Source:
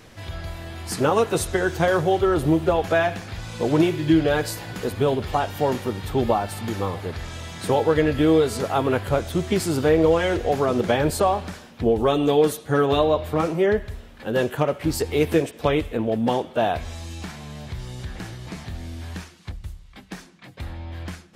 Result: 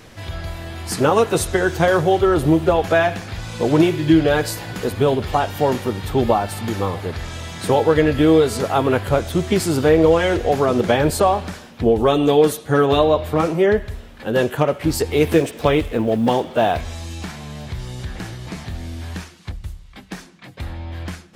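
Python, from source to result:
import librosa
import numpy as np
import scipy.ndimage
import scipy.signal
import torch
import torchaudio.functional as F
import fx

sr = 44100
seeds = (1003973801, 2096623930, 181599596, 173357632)

y = fx.law_mismatch(x, sr, coded='mu', at=(15.23, 16.81))
y = y * librosa.db_to_amplitude(4.0)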